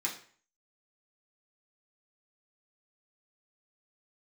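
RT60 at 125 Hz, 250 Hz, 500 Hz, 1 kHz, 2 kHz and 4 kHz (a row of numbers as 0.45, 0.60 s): 0.50, 0.45, 0.45, 0.45, 0.50, 0.40 s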